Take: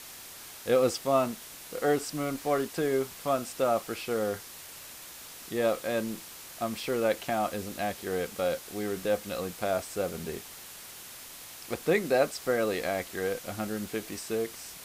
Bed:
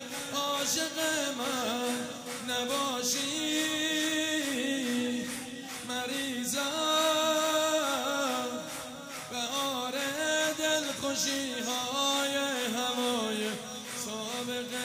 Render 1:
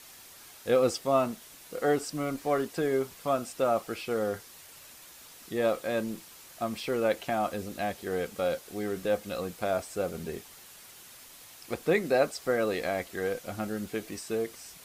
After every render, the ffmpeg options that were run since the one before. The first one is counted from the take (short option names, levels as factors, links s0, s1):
-af "afftdn=nr=6:nf=-46"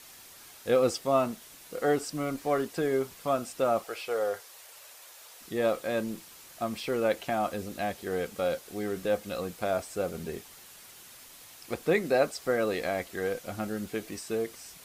-filter_complex "[0:a]asettb=1/sr,asplit=3[s0][s1][s2];[s0]atrim=end=3.844[s3];[s1]atrim=start=3.84:end=5.41,asetpts=PTS-STARTPTS,afade=t=in:d=0.004:c=qsin,afade=t=out:st=1.566:d=0.004:c=qsin,lowshelf=f=360:t=q:w=1.5:g=-12.5[s4];[s2]atrim=start=5.406[s5];[s3][s4]acrossfade=d=0.004:c1=hsin:c2=qsin[s6];[s6][s5]acrossfade=d=0.004:c1=qsin:c2=hsin"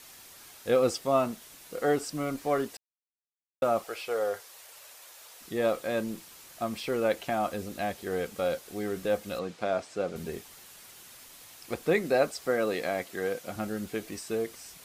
-filter_complex "[0:a]asettb=1/sr,asplit=3[s0][s1][s2];[s0]atrim=end=9.394[s3];[s1]atrim=start=9.39:end=10.16,asetpts=PTS-STARTPTS,afade=t=in:d=0.004:c=qsin,afade=t=out:st=0.766:d=0.004:c=qsin,highpass=130,lowpass=5600[s4];[s2]atrim=start=10.156[s5];[s3][s4]acrossfade=d=0.004:c1=hsin:c2=qsin[s6];[s6][s5]acrossfade=d=0.004:c1=qsin:c2=hsin,asettb=1/sr,asplit=3[s7][s8][s9];[s7]atrim=end=12.464[s10];[s8]atrim=start=12.46:end=13.56,asetpts=PTS-STARTPTS,afade=t=in:d=0.004:c=qsin,afade=t=out:st=1.096:d=0.004:c=qsin,highpass=120[s11];[s9]atrim=start=13.556[s12];[s10][s11]acrossfade=d=0.004:c1=hsin:c2=qsin[s13];[s13][s12]acrossfade=d=0.004:c1=qsin:c2=hsin,asplit=3[s14][s15][s16];[s14]atrim=end=2.77,asetpts=PTS-STARTPTS,afade=t=out:st=2.766:d=0.004:c=hsin[s17];[s15]atrim=start=2.77:end=3.62,asetpts=PTS-STARTPTS,volume=0[s18];[s16]atrim=start=3.62,asetpts=PTS-STARTPTS,afade=t=in:d=0.004:c=hsin[s19];[s17][s18][s19]concat=n=3:v=0:a=1"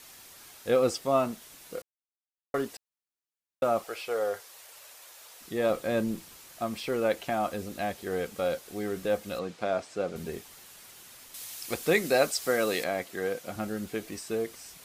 -filter_complex "[0:a]asettb=1/sr,asplit=3[s0][s1][s2];[s0]atrim=end=5.704[s3];[s1]atrim=start=5.7:end=6.37,asetpts=PTS-STARTPTS,afade=t=in:d=0.004:c=qsin,afade=t=out:st=0.666:d=0.004:c=qsin,lowshelf=f=290:g=7[s4];[s2]atrim=start=6.366[s5];[s3][s4]acrossfade=d=0.004:c1=hsin:c2=qsin[s6];[s6][s5]acrossfade=d=0.004:c1=qsin:c2=hsin,asettb=1/sr,asplit=3[s7][s8][s9];[s7]atrim=end=11.344[s10];[s8]atrim=start=11.34:end=12.84,asetpts=PTS-STARTPTS,afade=t=in:d=0.004:c=qsin,afade=t=out:st=1.496:d=0.004:c=qsin,highshelf=f=2600:g=10.5[s11];[s9]atrim=start=12.836[s12];[s10][s11]acrossfade=d=0.004:c1=hsin:c2=qsin[s13];[s13][s12]acrossfade=d=0.004:c1=qsin:c2=hsin,asplit=3[s14][s15][s16];[s14]atrim=end=1.82,asetpts=PTS-STARTPTS,afade=t=out:st=1.816:d=0.004:c=hsin[s17];[s15]atrim=start=1.82:end=2.54,asetpts=PTS-STARTPTS,volume=0[s18];[s16]atrim=start=2.54,asetpts=PTS-STARTPTS,afade=t=in:d=0.004:c=hsin[s19];[s17][s18][s19]concat=n=3:v=0:a=1"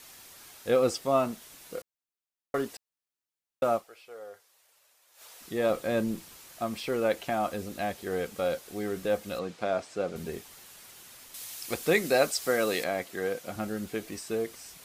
-filter_complex "[0:a]asplit=3[s0][s1][s2];[s0]atrim=end=4.21,asetpts=PTS-STARTPTS,afade=t=out:st=3.75:d=0.46:c=exp:silence=0.177828[s3];[s1]atrim=start=4.21:end=4.76,asetpts=PTS-STARTPTS,volume=0.178[s4];[s2]atrim=start=4.76,asetpts=PTS-STARTPTS,afade=t=in:d=0.46:c=exp:silence=0.177828[s5];[s3][s4][s5]concat=n=3:v=0:a=1"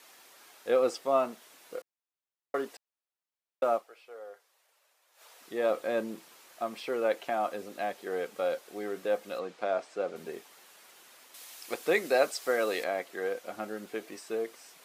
-af "highpass=360,highshelf=f=3400:g=-8.5"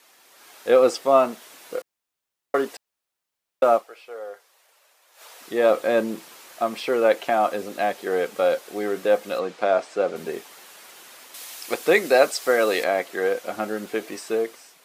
-af "dynaudnorm=f=100:g=9:m=3.16"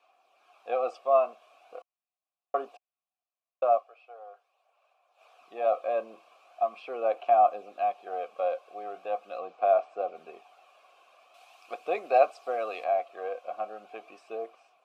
-filter_complex "[0:a]asplit=3[s0][s1][s2];[s0]bandpass=f=730:t=q:w=8,volume=1[s3];[s1]bandpass=f=1090:t=q:w=8,volume=0.501[s4];[s2]bandpass=f=2440:t=q:w=8,volume=0.355[s5];[s3][s4][s5]amix=inputs=3:normalize=0,aphaser=in_gain=1:out_gain=1:delay=1.9:decay=0.29:speed=0.41:type=sinusoidal"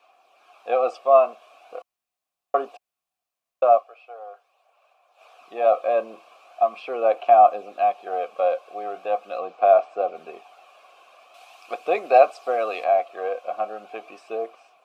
-af "volume=2.37,alimiter=limit=0.708:level=0:latency=1"